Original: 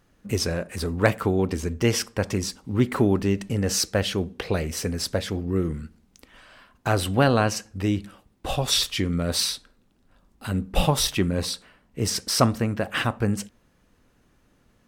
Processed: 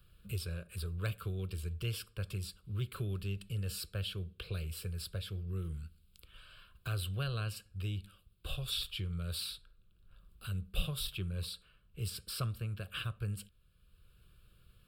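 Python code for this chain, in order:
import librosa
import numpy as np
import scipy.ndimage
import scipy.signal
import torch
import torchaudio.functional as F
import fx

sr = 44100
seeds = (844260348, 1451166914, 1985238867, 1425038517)

y = fx.tone_stack(x, sr, knobs='6-0-2')
y = fx.fixed_phaser(y, sr, hz=1300.0, stages=8)
y = fx.band_squash(y, sr, depth_pct=40)
y = y * 10.0 ** (6.5 / 20.0)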